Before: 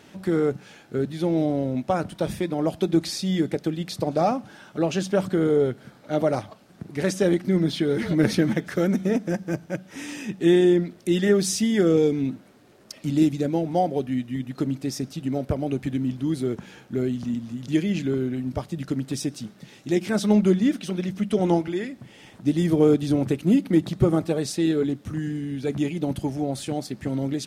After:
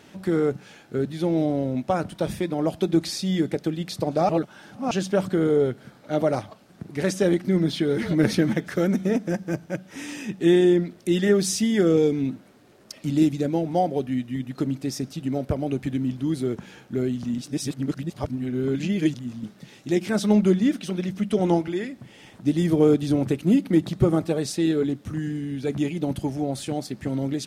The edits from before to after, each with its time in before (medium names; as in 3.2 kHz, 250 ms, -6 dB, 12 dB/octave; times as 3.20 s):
4.29–4.91 s: reverse
17.38–19.44 s: reverse